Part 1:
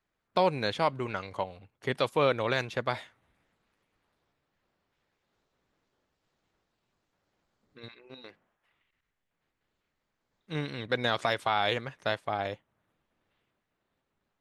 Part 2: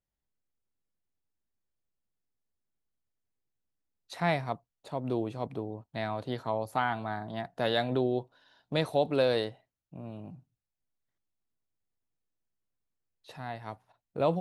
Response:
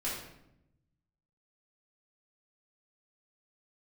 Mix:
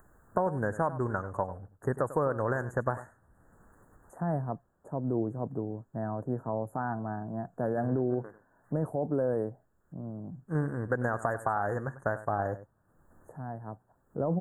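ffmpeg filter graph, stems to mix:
-filter_complex "[0:a]acompressor=threshold=-27dB:ratio=6,volume=2.5dB,asplit=2[link_01][link_02];[link_02]volume=-14.5dB[link_03];[1:a]highpass=130,tiltshelf=frequency=800:gain=6,alimiter=limit=-19dB:level=0:latency=1:release=17,volume=-3dB[link_04];[link_03]aecho=0:1:97:1[link_05];[link_01][link_04][link_05]amix=inputs=3:normalize=0,lowshelf=frequency=110:gain=10,acompressor=mode=upward:threshold=-45dB:ratio=2.5,asuperstop=centerf=3500:order=20:qfactor=0.69"

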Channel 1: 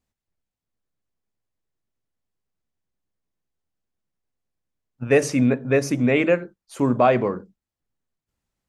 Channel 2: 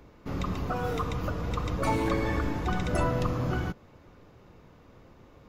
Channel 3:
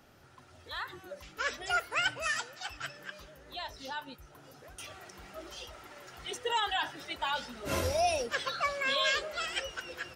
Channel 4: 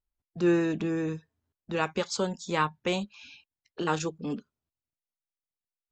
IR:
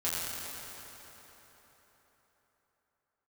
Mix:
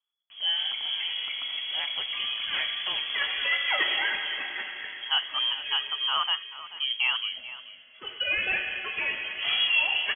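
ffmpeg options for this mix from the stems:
-filter_complex "[0:a]equalizer=frequency=2200:width_type=o:width=0.28:gain=10,volume=-10dB,asplit=3[link_01][link_02][link_03];[link_02]volume=-15dB[link_04];[1:a]acompressor=threshold=-35dB:ratio=6,adelay=300,volume=0dB,asplit=2[link_05][link_06];[link_06]volume=-6.5dB[link_07];[2:a]aemphasis=mode=reproduction:type=75fm,agate=range=-16dB:threshold=-46dB:ratio=16:detection=peak,adelay=1750,volume=0dB,asplit=2[link_08][link_09];[link_09]volume=-6dB[link_10];[3:a]equalizer=frequency=790:width=1.2:gain=-8.5,volume=-4.5dB,asplit=2[link_11][link_12];[link_12]volume=-16.5dB[link_13];[link_03]apad=whole_len=524898[link_14];[link_08][link_14]sidechaincompress=threshold=-36dB:ratio=8:attack=16:release=476[link_15];[4:a]atrim=start_sample=2205[link_16];[link_07][link_10][link_13]amix=inputs=3:normalize=0[link_17];[link_17][link_16]afir=irnorm=-1:irlink=0[link_18];[link_04]aecho=0:1:436:1[link_19];[link_01][link_05][link_15][link_11][link_18][link_19]amix=inputs=6:normalize=0,lowpass=frequency=2900:width_type=q:width=0.5098,lowpass=frequency=2900:width_type=q:width=0.6013,lowpass=frequency=2900:width_type=q:width=0.9,lowpass=frequency=2900:width_type=q:width=2.563,afreqshift=-3400"

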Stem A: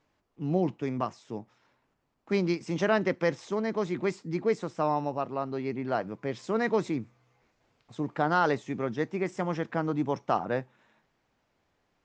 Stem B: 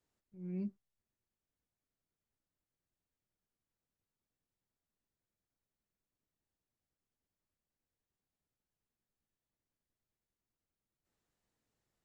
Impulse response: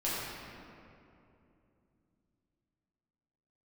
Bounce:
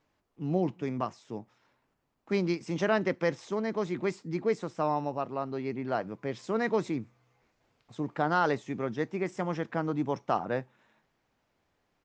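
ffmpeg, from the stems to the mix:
-filter_complex "[0:a]volume=-1.5dB,asplit=2[link_01][link_02];[1:a]adelay=250,volume=-12.5dB[link_03];[link_02]apad=whole_len=542314[link_04];[link_03][link_04]sidechaincompress=threshold=-35dB:ratio=8:attack=16:release=248[link_05];[link_01][link_05]amix=inputs=2:normalize=0"

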